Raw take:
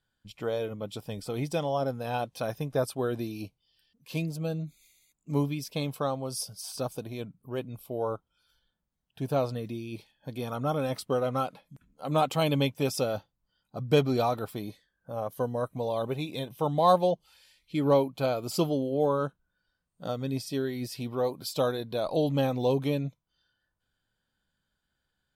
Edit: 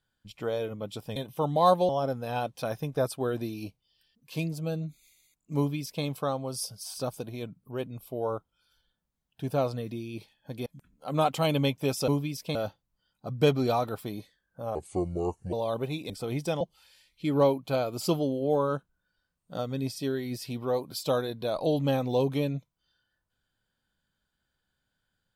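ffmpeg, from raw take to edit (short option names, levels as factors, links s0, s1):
-filter_complex "[0:a]asplit=10[s0][s1][s2][s3][s4][s5][s6][s7][s8][s9];[s0]atrim=end=1.162[s10];[s1]atrim=start=16.378:end=17.112[s11];[s2]atrim=start=1.668:end=10.442[s12];[s3]atrim=start=11.628:end=13.052[s13];[s4]atrim=start=5.348:end=5.822[s14];[s5]atrim=start=13.048:end=15.254[s15];[s6]atrim=start=15.25:end=15.81,asetpts=PTS-STARTPTS,asetrate=31752,aresample=44100[s16];[s7]atrim=start=15.806:end=16.382[s17];[s8]atrim=start=1.158:end=1.672[s18];[s9]atrim=start=17.108[s19];[s10][s11]acrossfade=d=0.004:c1=hsin:c2=hsin[s20];[s20][s12]acrossfade=d=0.004:c1=hsin:c2=hsin[s21];[s21][s13]acrossfade=d=0.004:c1=hsin:c2=hsin[s22];[s22][s14]acrossfade=d=0.004:c1=hsin:c2=hsin[s23];[s23][s15]acrossfade=d=0.004:c1=hsin:c2=hsin[s24];[s24][s16]acrossfade=d=0.004:c1=hsin:c2=hsin[s25];[s25][s17]acrossfade=d=0.004:c1=hsin:c2=hsin[s26];[s26][s18]acrossfade=d=0.004:c1=hsin:c2=hsin[s27];[s27][s19]acrossfade=d=0.004:c1=hsin:c2=hsin"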